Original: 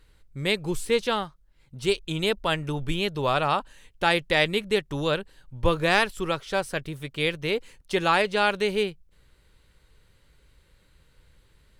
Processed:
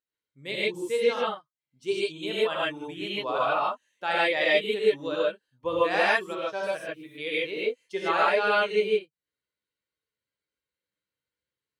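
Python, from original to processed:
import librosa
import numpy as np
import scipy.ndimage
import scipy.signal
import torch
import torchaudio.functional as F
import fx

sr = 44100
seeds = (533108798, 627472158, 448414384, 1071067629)

y = fx.bin_expand(x, sr, power=1.5)
y = scipy.signal.sosfilt(scipy.signal.butter(2, 340.0, 'highpass', fs=sr, output='sos'), y)
y = fx.high_shelf(y, sr, hz=5300.0, db=-11.5)
y = fx.rev_gated(y, sr, seeds[0], gate_ms=170, shape='rising', drr_db=-7.5)
y = y * 10.0 ** (-5.0 / 20.0)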